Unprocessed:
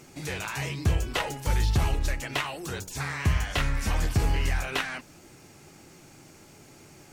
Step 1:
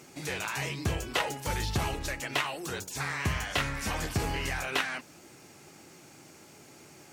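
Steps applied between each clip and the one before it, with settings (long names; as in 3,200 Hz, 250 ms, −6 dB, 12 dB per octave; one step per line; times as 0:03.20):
high-pass filter 190 Hz 6 dB per octave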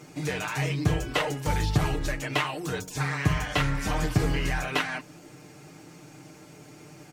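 spectral tilt −1.5 dB per octave
comb filter 6.6 ms, depth 63%
level +2 dB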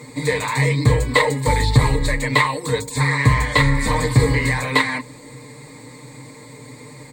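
EQ curve with evenly spaced ripples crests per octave 0.99, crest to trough 17 dB
level +6.5 dB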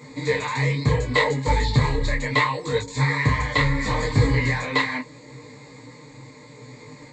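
downsampling to 16,000 Hz
micro pitch shift up and down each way 25 cents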